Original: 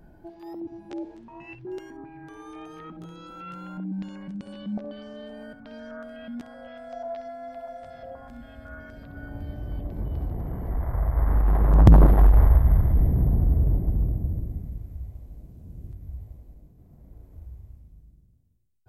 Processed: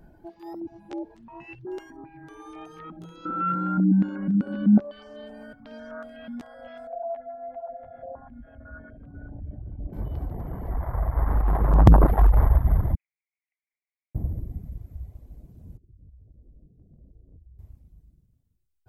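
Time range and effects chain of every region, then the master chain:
3.25–4.8 LPF 1900 Hz 6 dB/oct + small resonant body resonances 240/1400 Hz, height 17 dB, ringing for 20 ms
6.87–9.93 formant sharpening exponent 1.5 + LPF 2700 Hz 24 dB/oct + notches 50/100/150 Hz
12.95–14.15 gate -16 dBFS, range -15 dB + Butterworth band-pass 2400 Hz, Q 4.4
15.77–17.59 inverse Chebyshev low-pass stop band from 2400 Hz, stop band 70 dB + compressor 10:1, threshold -45 dBFS
whole clip: reverb removal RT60 0.64 s; dynamic EQ 960 Hz, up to +5 dB, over -47 dBFS, Q 0.9

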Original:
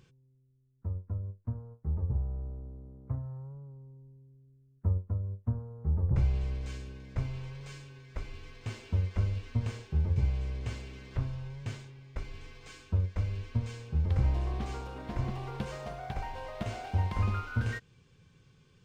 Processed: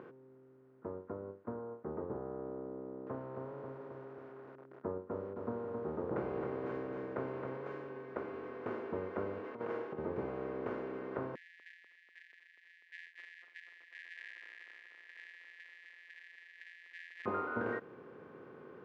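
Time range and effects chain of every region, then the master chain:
2.8–7.57 HPF 59 Hz 6 dB/oct + lo-fi delay 0.267 s, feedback 55%, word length 10-bit, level -7 dB
9.44–9.99 HPF 370 Hz 6 dB/oct + comb 6.2 ms, depth 42% + negative-ratio compressor -43 dBFS, ratio -0.5
11.35–17.26 sample sorter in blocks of 256 samples + brick-wall FIR high-pass 1600 Hz + tape echo 0.245 s, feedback 70%, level -19.5 dB, low-pass 4400 Hz
whole clip: per-bin compression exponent 0.6; Chebyshev band-pass 340–1300 Hz, order 2; bell 410 Hz +7.5 dB 2.2 oct

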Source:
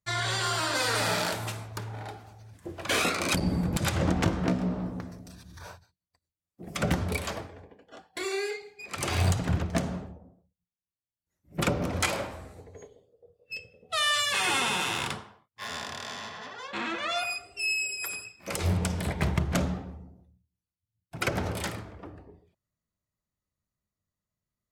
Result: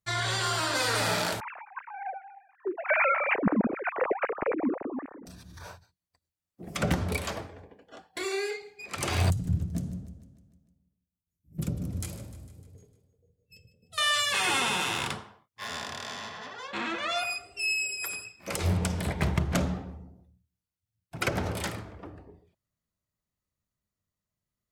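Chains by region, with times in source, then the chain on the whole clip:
1.4–5.26 sine-wave speech + steep low-pass 2500 Hz 72 dB/oct
9.3–13.98 EQ curve 160 Hz 0 dB, 890 Hz -24 dB, 2300 Hz -22 dB, 12000 Hz -3 dB + feedback echo 0.151 s, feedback 58%, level -15 dB
whole clip: dry

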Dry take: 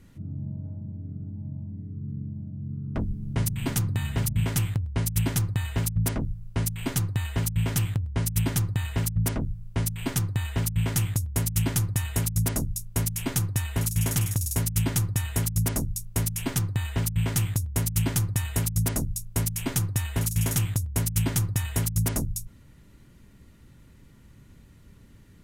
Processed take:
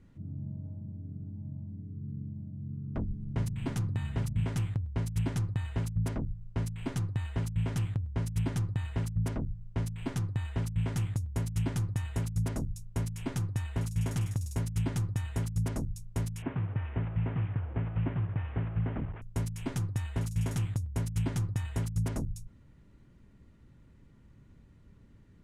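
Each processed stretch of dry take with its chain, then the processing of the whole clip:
16.42–19.22 delta modulation 16 kbps, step -33.5 dBFS + HPF 44 Hz + air absorption 200 m
whole clip: LPF 9000 Hz 12 dB/oct; high shelf 2300 Hz -10 dB; gain -5 dB

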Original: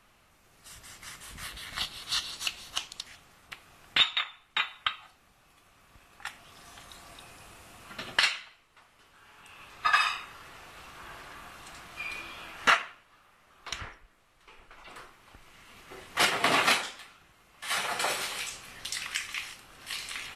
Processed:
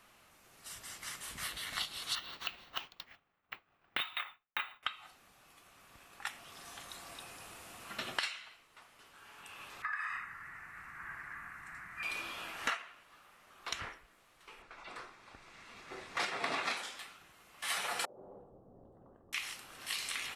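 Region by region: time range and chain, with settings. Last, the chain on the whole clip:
2.15–4.83 LPF 2500 Hz + expander -48 dBFS + careless resampling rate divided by 2×, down filtered, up hold
9.82–12.03 EQ curve 160 Hz 0 dB, 540 Hz -17 dB, 1900 Hz +7 dB, 3200 Hz -22 dB, 7800 Hz -13 dB + compressor, threshold -33 dBFS
14.62–16.77 LPF 6200 Hz + notch 3000 Hz, Q 8.6
18.05–19.33 inverse Chebyshev low-pass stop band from 2100 Hz, stop band 60 dB + compressor, threshold -47 dBFS
whole clip: low shelf 110 Hz -10.5 dB; compressor 5:1, threshold -34 dBFS; high shelf 9100 Hz +4 dB

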